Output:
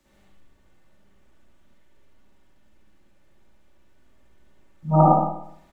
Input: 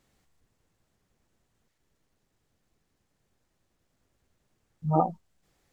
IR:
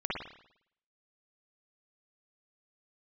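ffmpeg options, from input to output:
-filter_complex "[0:a]aecho=1:1:3.4:0.43,acrossover=split=130|200|710[a][b][c][d];[c]alimiter=limit=-23dB:level=0:latency=1[e];[a][b][e][d]amix=inputs=4:normalize=0,aecho=1:1:71:0.596[f];[1:a]atrim=start_sample=2205[g];[f][g]afir=irnorm=-1:irlink=0,volume=3.5dB"

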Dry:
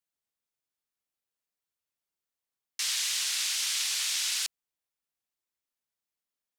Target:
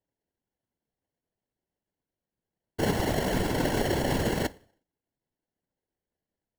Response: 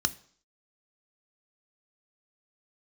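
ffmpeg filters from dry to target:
-filter_complex "[0:a]asplit=2[a][b];[1:a]atrim=start_sample=2205[c];[b][c]afir=irnorm=-1:irlink=0,volume=0.5dB[d];[a][d]amix=inputs=2:normalize=0,acrusher=samples=36:mix=1:aa=0.000001,afftfilt=real='hypot(re,im)*cos(2*PI*random(0))':imag='hypot(re,im)*sin(2*PI*random(1))':win_size=512:overlap=0.75"

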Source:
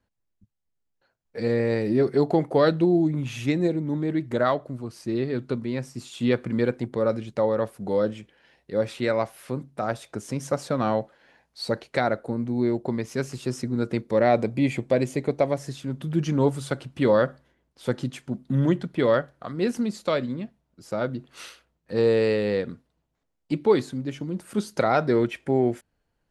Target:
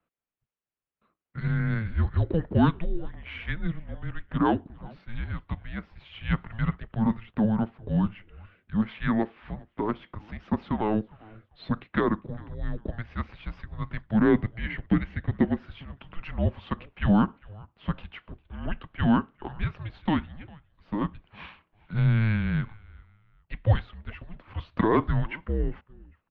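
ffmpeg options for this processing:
-filter_complex "[0:a]highpass=f=380:t=q:w=0.5412,highpass=f=380:t=q:w=1.307,lowpass=f=3.4k:t=q:w=0.5176,lowpass=f=3.4k:t=q:w=0.7071,lowpass=f=3.4k:t=q:w=1.932,afreqshift=-330,asplit=3[a][b][c];[b]adelay=401,afreqshift=-100,volume=-23.5dB[d];[c]adelay=802,afreqshift=-200,volume=-33.7dB[e];[a][d][e]amix=inputs=3:normalize=0"

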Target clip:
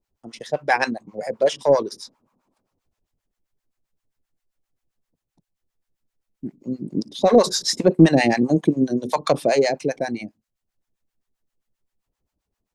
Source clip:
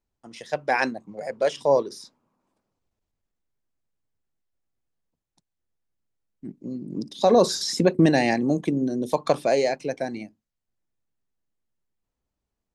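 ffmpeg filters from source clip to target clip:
-filter_complex "[0:a]acontrast=45,acrossover=split=670[a][b];[a]aeval=exprs='val(0)*(1-1/2+1/2*cos(2*PI*7.6*n/s))':c=same[c];[b]aeval=exprs='val(0)*(1-1/2-1/2*cos(2*PI*7.6*n/s))':c=same[d];[c][d]amix=inputs=2:normalize=0,volume=3dB"

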